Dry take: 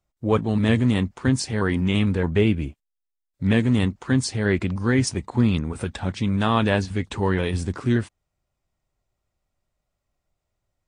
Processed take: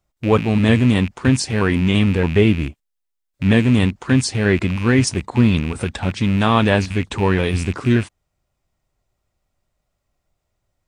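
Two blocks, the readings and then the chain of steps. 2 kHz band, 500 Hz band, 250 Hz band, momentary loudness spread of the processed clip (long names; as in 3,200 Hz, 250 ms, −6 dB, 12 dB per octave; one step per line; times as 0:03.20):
+6.0 dB, +5.0 dB, +5.0 dB, 7 LU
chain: loose part that buzzes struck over −30 dBFS, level −25 dBFS
level +5 dB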